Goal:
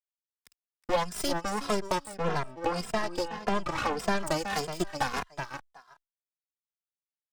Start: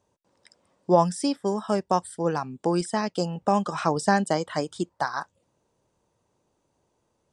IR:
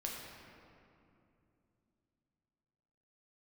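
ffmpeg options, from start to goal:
-filter_complex "[0:a]aeval=exprs='sgn(val(0))*max(abs(val(0))-0.0075,0)':c=same,highpass=f=790:p=1,aecho=1:1:370|740:0.2|0.0379,acompressor=threshold=0.02:ratio=2.5,aeval=exprs='0.106*(cos(1*acos(clip(val(0)/0.106,-1,1)))-cos(1*PI/2))+0.0188*(cos(8*acos(clip(val(0)/0.106,-1,1)))-cos(8*PI/2))':c=same,asettb=1/sr,asplit=3[s0][s1][s2];[s0]atrim=end=2.164[s3];[s1]atrim=start=2.16:end=4.2,asetpts=PTS-STARTPTS,afade=t=in:d=0.004:c=qsin,afade=t=out:st=2.036:d=0.004:c=qsin,lowpass=f=3500:p=1[s4];[s2]atrim=start=4.196[s5];[s3][s4]acrossfade=d=0.004:c1=hsin:c2=qsin[s6];[s6][s5]acrossfade=d=0.004:c1=qsin:c2=hsin,asplit=2[s7][s8];[s8]adelay=2.5,afreqshift=-1.7[s9];[s7][s9]amix=inputs=2:normalize=1,volume=2.66"

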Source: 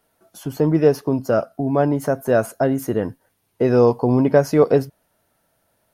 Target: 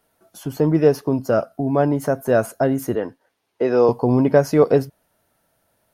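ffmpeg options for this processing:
-filter_complex "[0:a]asettb=1/sr,asplit=3[s0][s1][s2];[s0]atrim=end=2.954[s3];[s1]atrim=start=2.95:end=3.89,asetpts=PTS-STARTPTS,afade=t=in:d=0.004:c=qsin,afade=t=out:st=0.936:d=0.004:c=qsin,acrossover=split=260 6600:gain=0.178 1 0.224[s4][s5][s6];[s4][s5][s6]amix=inputs=3:normalize=0[s7];[s2]atrim=start=3.886[s8];[s3][s7]acrossfade=d=0.004:c1=hsin:c2=qsin[s9];[s9][s8]acrossfade=d=0.004:c1=qsin:c2=hsin"

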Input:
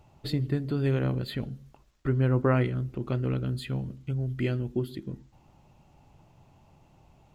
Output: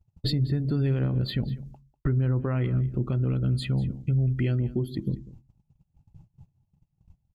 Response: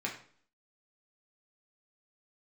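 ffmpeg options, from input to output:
-filter_complex "[0:a]afftdn=nr=16:nf=-47,agate=range=0.0631:threshold=0.00126:ratio=16:detection=peak,bass=f=250:g=7,treble=f=4000:g=7,alimiter=limit=0.0841:level=0:latency=1:release=254,asplit=2[s0][s1];[s1]aecho=0:1:195:0.119[s2];[s0][s2]amix=inputs=2:normalize=0,volume=1.68"

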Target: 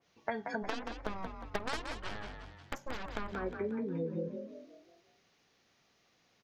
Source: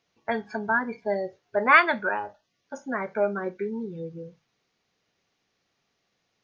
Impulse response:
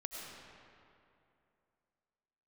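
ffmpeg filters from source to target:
-filter_complex "[0:a]acompressor=threshold=0.0158:ratio=10,asplit=3[s0][s1][s2];[s0]afade=t=out:st=0.62:d=0.02[s3];[s1]aeval=exprs='0.0422*(cos(1*acos(clip(val(0)/0.0422,-1,1)))-cos(1*PI/2))+0.0211*(cos(3*acos(clip(val(0)/0.0422,-1,1)))-cos(3*PI/2))+0.00376*(cos(5*acos(clip(val(0)/0.0422,-1,1)))-cos(5*PI/2))+0.0075*(cos(6*acos(clip(val(0)/0.0422,-1,1)))-cos(6*PI/2))+0.00211*(cos(7*acos(clip(val(0)/0.0422,-1,1)))-cos(7*PI/2))':c=same,afade=t=in:st=0.62:d=0.02,afade=t=out:st=3.31:d=0.02[s4];[s2]afade=t=in:st=3.31:d=0.02[s5];[s3][s4][s5]amix=inputs=3:normalize=0,asplit=6[s6][s7][s8][s9][s10][s11];[s7]adelay=179,afreqshift=44,volume=0.501[s12];[s8]adelay=358,afreqshift=88,volume=0.216[s13];[s9]adelay=537,afreqshift=132,volume=0.0923[s14];[s10]adelay=716,afreqshift=176,volume=0.0398[s15];[s11]adelay=895,afreqshift=220,volume=0.0172[s16];[s6][s12][s13][s14][s15][s16]amix=inputs=6:normalize=0,adynamicequalizer=threshold=0.00141:dfrequency=2100:dqfactor=0.7:tfrequency=2100:tqfactor=0.7:attack=5:release=100:ratio=0.375:range=3:mode=cutabove:tftype=highshelf,volume=1.41"

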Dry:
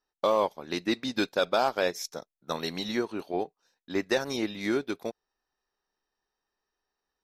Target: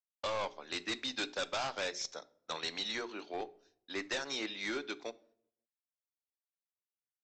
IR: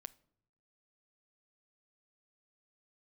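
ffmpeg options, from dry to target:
-filter_complex "[0:a]bandreject=f=60:t=h:w=6,bandreject=f=120:t=h:w=6,bandreject=f=180:t=h:w=6,bandreject=f=240:t=h:w=6,bandreject=f=300:t=h:w=6,bandreject=f=360:t=h:w=6,bandreject=f=420:t=h:w=6,acrossover=split=160[s0][s1];[s1]crystalizer=i=9:c=0[s2];[s0][s2]amix=inputs=2:normalize=0,acrossover=split=230 3800:gain=0.178 1 0.2[s3][s4][s5];[s3][s4][s5]amix=inputs=3:normalize=0,aresample=16000,asoftclip=type=hard:threshold=0.075,aresample=44100,agate=range=0.0224:threshold=0.002:ratio=3:detection=peak[s6];[1:a]atrim=start_sample=2205[s7];[s6][s7]afir=irnorm=-1:irlink=0,volume=0.668"

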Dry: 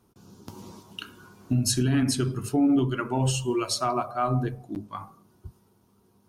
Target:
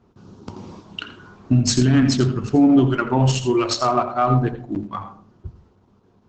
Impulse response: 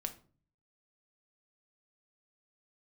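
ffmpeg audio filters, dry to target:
-filter_complex "[0:a]asplit=2[s0][s1];[1:a]atrim=start_sample=2205,highshelf=f=5500:g=9.5,adelay=83[s2];[s1][s2]afir=irnorm=-1:irlink=0,volume=0.299[s3];[s0][s3]amix=inputs=2:normalize=0,adynamicsmooth=sensitivity=4:basefreq=3800,volume=2.51" -ar 48000 -c:a libopus -b:a 12k

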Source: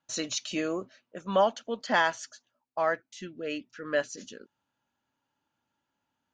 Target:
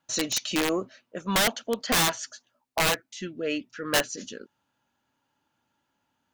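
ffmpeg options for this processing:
-af "asoftclip=type=tanh:threshold=0.119,acontrast=82,aeval=exprs='(mod(6.31*val(0)+1,2)-1)/6.31':c=same,volume=0.841"

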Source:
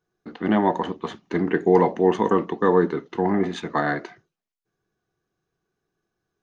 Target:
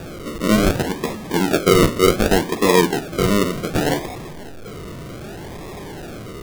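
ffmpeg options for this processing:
-af "aeval=exprs='val(0)+0.5*0.0335*sgn(val(0))':c=same,acrusher=samples=42:mix=1:aa=0.000001:lfo=1:lforange=25.2:lforate=0.66,volume=1.41"

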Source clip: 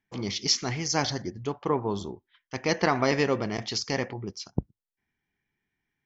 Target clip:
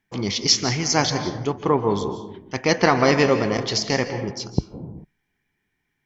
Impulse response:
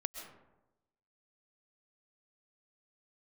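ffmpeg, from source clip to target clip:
-filter_complex "[0:a]asplit=2[s0][s1];[1:a]atrim=start_sample=2205,afade=t=out:st=0.41:d=0.01,atrim=end_sample=18522,asetrate=35280,aresample=44100[s2];[s1][s2]afir=irnorm=-1:irlink=0,volume=1.58[s3];[s0][s3]amix=inputs=2:normalize=0,volume=0.841"

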